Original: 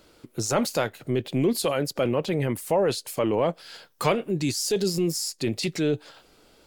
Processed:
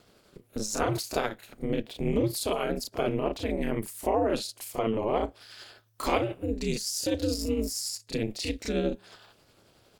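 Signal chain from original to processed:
time stretch by overlap-add 1.5×, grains 181 ms
ring modulation 110 Hz

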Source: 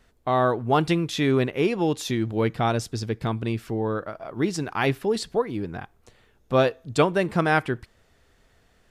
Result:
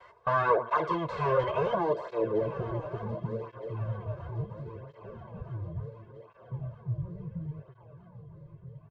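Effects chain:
meter weighting curve ITU-R 468
sine wavefolder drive 19 dB, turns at −3 dBFS
noise gate with hold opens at −29 dBFS
soft clipping −16 dBFS, distortion −7 dB
comb filter 1.9 ms, depth 86%
treble cut that deepens with the level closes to 2,100 Hz, closed at −5 dBFS
formants moved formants +3 semitones
low-pass filter sweep 1,000 Hz → 120 Hz, 0:01.56–0:03.71
feedback echo with a long and a short gap by turns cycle 1,265 ms, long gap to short 3 to 1, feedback 55%, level −15 dB
through-zero flanger with one copy inverted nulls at 0.71 Hz, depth 4.8 ms
level −8.5 dB

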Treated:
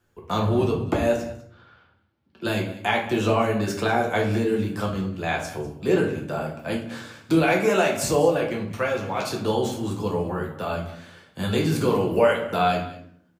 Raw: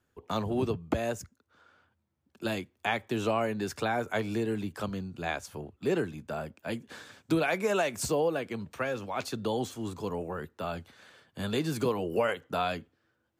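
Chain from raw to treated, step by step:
0:01.16–0:02.45: high shelf with overshoot 5,400 Hz −10.5 dB, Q 1.5
on a send: single-tap delay 197 ms −17 dB
on the sum: rectangular room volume 78 cubic metres, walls mixed, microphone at 0.81 metres
level +4 dB

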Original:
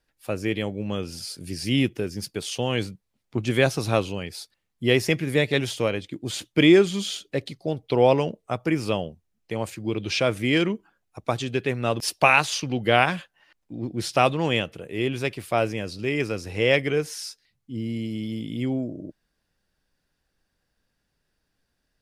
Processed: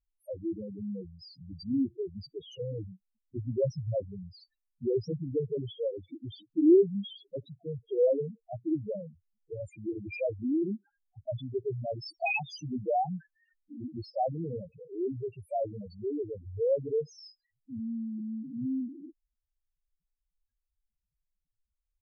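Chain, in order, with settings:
spectral peaks only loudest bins 2
level −3.5 dB
AAC 192 kbit/s 44,100 Hz

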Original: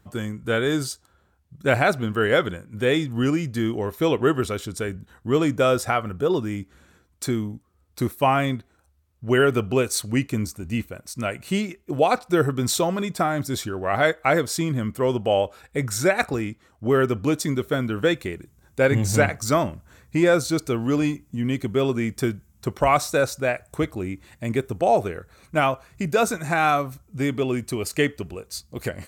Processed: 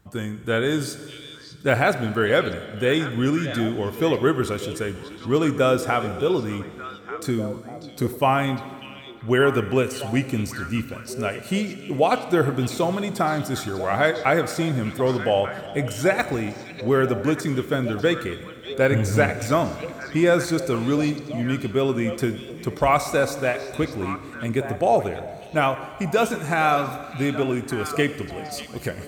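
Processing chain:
de-essing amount 55%
on a send: echo through a band-pass that steps 595 ms, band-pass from 3,700 Hz, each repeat −1.4 octaves, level −6.5 dB
on the sum: four-comb reverb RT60 2.3 s, combs from 31 ms, DRR 11.5 dB

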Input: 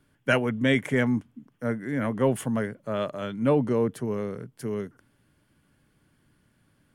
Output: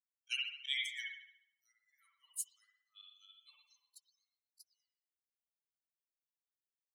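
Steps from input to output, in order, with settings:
spectral dynamics exaggerated over time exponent 3
Butterworth high-pass 2,900 Hz 36 dB per octave
volume swells 115 ms
convolution reverb, pre-delay 55 ms, DRR −2 dB
level +9.5 dB

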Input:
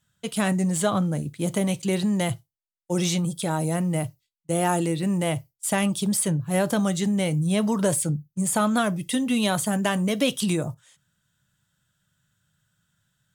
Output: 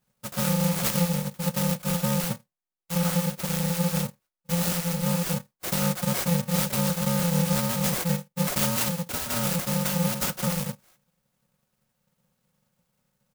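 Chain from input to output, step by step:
samples in bit-reversed order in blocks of 128 samples
low-pass filter 3,900 Hz 6 dB per octave
low-shelf EQ 180 Hz −5 dB
comb filter 5.5 ms, depth 85%
in parallel at −12 dB: sample-and-hold swept by an LFO 15×, swing 60% 1.8 Hz
on the sum: converter with an unsteady clock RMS 0.099 ms

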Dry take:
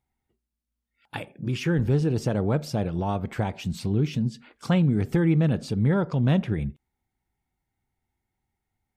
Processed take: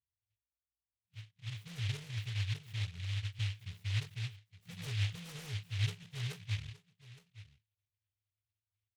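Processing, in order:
first-order pre-emphasis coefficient 0.9
brick-wall band-stop 180–5,100 Hz
dynamic equaliser 160 Hz, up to +8 dB, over −57 dBFS, Q 4.2
soft clipping −36.5 dBFS, distortion −12 dB
resonances in every octave G#, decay 0.19 s
single-tap delay 867 ms −16.5 dB
short delay modulated by noise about 2,700 Hz, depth 0.45 ms
level +17.5 dB

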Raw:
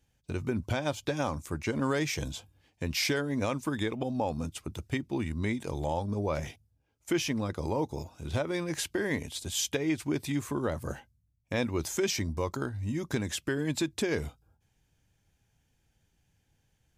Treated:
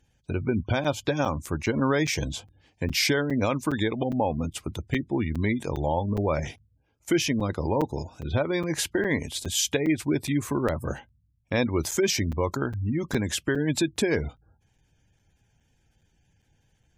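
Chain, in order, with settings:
pitch vibrato 3.2 Hz 11 cents
gate on every frequency bin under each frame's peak −30 dB strong
regular buffer underruns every 0.41 s, samples 256, zero, from 0:00.84
level +5.5 dB

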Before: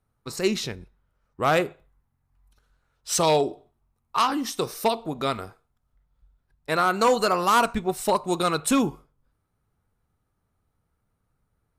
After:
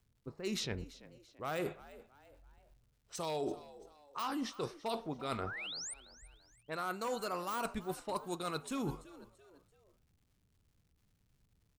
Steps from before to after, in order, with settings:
low-pass that shuts in the quiet parts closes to 350 Hz, open at −20 dBFS
de-essing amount 50%
high-shelf EQ 10,000 Hz +10 dB
reversed playback
downward compressor 12 to 1, threshold −35 dBFS, peak gain reduction 19 dB
reversed playback
sound drawn into the spectrogram rise, 0:05.46–0:05.94, 1,200–9,500 Hz −43 dBFS
on a send: echo with shifted repeats 337 ms, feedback 41%, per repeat +70 Hz, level −18 dB
on the sum: surface crackle 350 per second −66 dBFS

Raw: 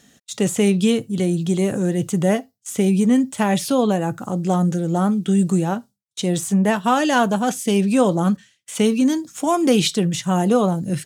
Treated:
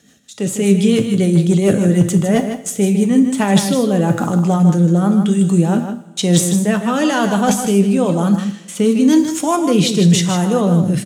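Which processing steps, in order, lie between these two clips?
reversed playback
downward compressor 12 to 1, threshold −25 dBFS, peak gain reduction 14.5 dB
reversed playback
high-pass filter 62 Hz
automatic gain control gain up to 13 dB
rotating-speaker cabinet horn 7 Hz, later 1 Hz, at 0:02.57
hard clipping −9 dBFS, distortion −34 dB
on a send: single-tap delay 154 ms −8.5 dB
on the sum: coupled-rooms reverb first 0.63 s, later 2.6 s, from −18 dB, DRR 9 dB
level +3 dB

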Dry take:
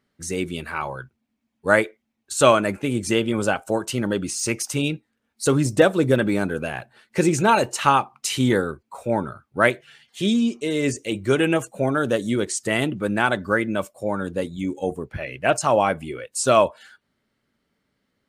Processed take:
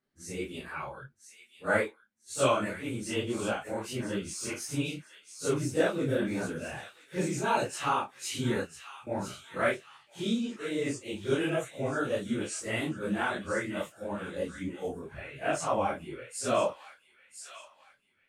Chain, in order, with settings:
random phases in long frames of 100 ms
0:08.63–0:09.07: guitar amp tone stack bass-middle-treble 6-0-2
delay with a high-pass on its return 999 ms, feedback 33%, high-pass 1,800 Hz, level −9.5 dB
micro pitch shift up and down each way 59 cents
level −6.5 dB

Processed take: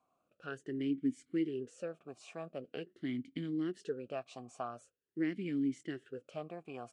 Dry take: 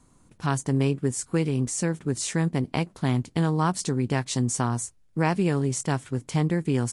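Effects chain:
formant filter swept between two vowels a-i 0.45 Hz
level −1.5 dB

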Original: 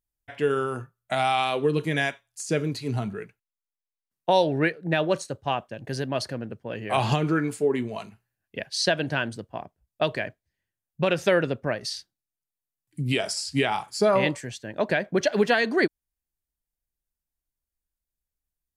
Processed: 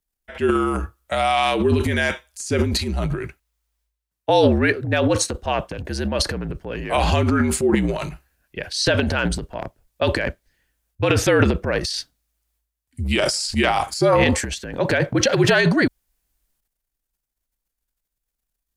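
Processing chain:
transient designer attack −1 dB, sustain +12 dB
frequency shifter −54 Hz
level +4 dB

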